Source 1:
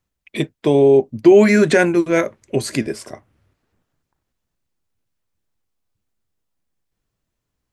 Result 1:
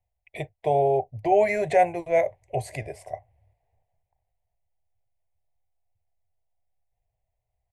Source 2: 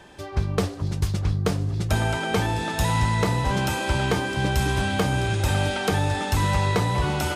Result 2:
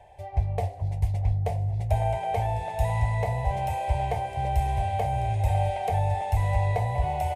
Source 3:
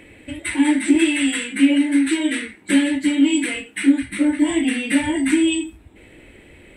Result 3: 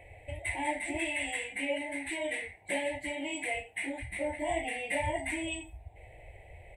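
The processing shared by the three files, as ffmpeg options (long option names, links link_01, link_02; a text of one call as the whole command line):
ffmpeg -i in.wav -af "firequalizer=gain_entry='entry(100,0);entry(240,-30);entry(450,-9);entry(720,7);entry(1300,-29);entry(2000,-6);entry(3200,-16);entry(5000,-20);entry(9300,-12)':delay=0.05:min_phase=1" out.wav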